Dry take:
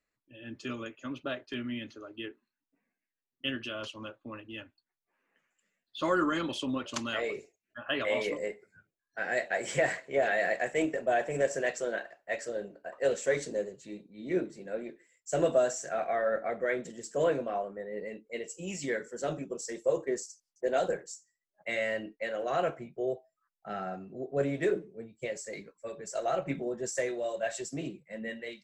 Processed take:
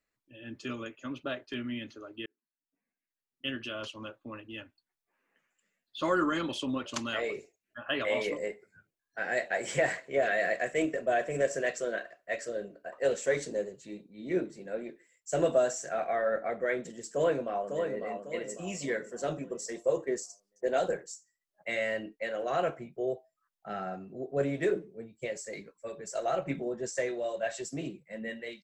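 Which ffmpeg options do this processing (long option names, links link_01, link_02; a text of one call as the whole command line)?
ffmpeg -i in.wav -filter_complex "[0:a]asettb=1/sr,asplit=3[link_01][link_02][link_03];[link_01]atrim=end=10.094[link_04];[link_02]atrim=start=10.09:end=12.88,asetpts=PTS-STARTPTS,afade=type=in:duration=0.004:curve=qsin,afade=type=out:start_time=2.786:duration=0.004:curve=qsin,asuperstop=centerf=850:order=4:qfactor=4.6[link_05];[link_03]atrim=start=12.876[link_06];[link_04][link_05]acrossfade=duration=0.004:curve1=hsin:curve2=qsin[link_07];[link_07][link_06]acrossfade=duration=0.004:curve1=qsin:curve2=hsin,asplit=2[link_08][link_09];[link_09]afade=type=in:start_time=17.12:duration=0.01,afade=type=out:start_time=18.02:duration=0.01,aecho=0:1:550|1100|1650|2200|2750:0.501187|0.200475|0.08019|0.032076|0.0128304[link_10];[link_08][link_10]amix=inputs=2:normalize=0,asettb=1/sr,asplit=3[link_11][link_12][link_13];[link_11]atrim=end=26.684[link_14];[link_12]atrim=start=26.68:end=27.63,asetpts=PTS-STARTPTS,afade=type=in:duration=0.004:curve=qsin,afade=type=out:start_time=0.946:duration=0.004:curve=qsin,lowpass=7100[link_15];[link_13]atrim=start=27.626[link_16];[link_14][link_15]acrossfade=duration=0.004:curve1=hsin:curve2=qsin[link_17];[link_17][link_16]acrossfade=duration=0.004:curve1=qsin:curve2=hsin,asplit=2[link_18][link_19];[link_18]atrim=end=2.26,asetpts=PTS-STARTPTS,afade=type=out:start_time=2.256:duration=0.004:curve=hsin[link_20];[link_19]atrim=start=2.26,asetpts=PTS-STARTPTS,afade=type=in:duration=1.47[link_21];[link_20][link_21]concat=n=2:v=0:a=1" out.wav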